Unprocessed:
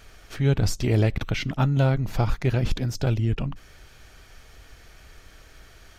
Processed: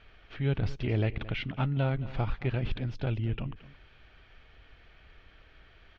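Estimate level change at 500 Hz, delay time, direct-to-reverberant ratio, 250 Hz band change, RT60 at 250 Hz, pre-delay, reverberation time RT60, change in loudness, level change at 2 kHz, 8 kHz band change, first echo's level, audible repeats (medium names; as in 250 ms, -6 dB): -7.5 dB, 223 ms, no reverb, -7.5 dB, no reverb, no reverb, no reverb, -7.5 dB, -5.5 dB, under -25 dB, -17.0 dB, 1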